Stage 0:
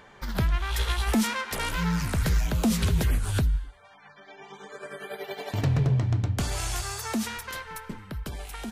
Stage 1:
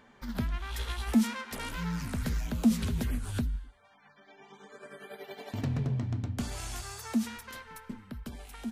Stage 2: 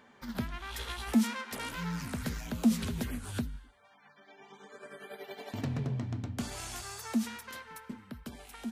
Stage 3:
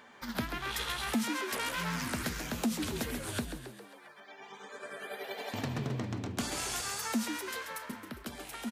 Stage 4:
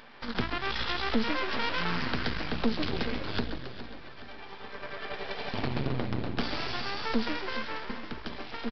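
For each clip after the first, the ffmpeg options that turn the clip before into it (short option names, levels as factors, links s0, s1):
-af "equalizer=f=240:t=o:w=0.28:g=13.5,volume=0.376"
-af "highpass=f=140:p=1"
-filter_complex "[0:a]lowshelf=f=370:g=-9,asplit=7[s0][s1][s2][s3][s4][s5][s6];[s1]adelay=135,afreqshift=77,volume=0.376[s7];[s2]adelay=270,afreqshift=154,volume=0.202[s8];[s3]adelay=405,afreqshift=231,volume=0.11[s9];[s4]adelay=540,afreqshift=308,volume=0.0589[s10];[s5]adelay=675,afreqshift=385,volume=0.032[s11];[s6]adelay=810,afreqshift=462,volume=0.0172[s12];[s0][s7][s8][s9][s10][s11][s12]amix=inputs=7:normalize=0,alimiter=level_in=1.58:limit=0.0631:level=0:latency=1:release=494,volume=0.631,volume=2"
-af "aresample=11025,aeval=exprs='max(val(0),0)':c=same,aresample=44100,aecho=1:1:416|832|1248|1664|2080:0.211|0.106|0.0528|0.0264|0.0132,volume=2.51"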